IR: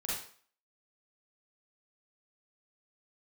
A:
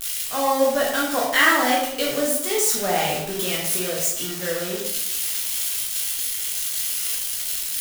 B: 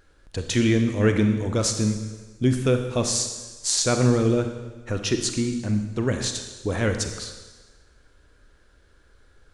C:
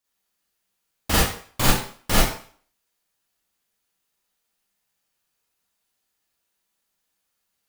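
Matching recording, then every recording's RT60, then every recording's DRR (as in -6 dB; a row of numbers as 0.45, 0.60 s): C; 0.80, 1.3, 0.45 s; -4.5, 6.0, -7.0 dB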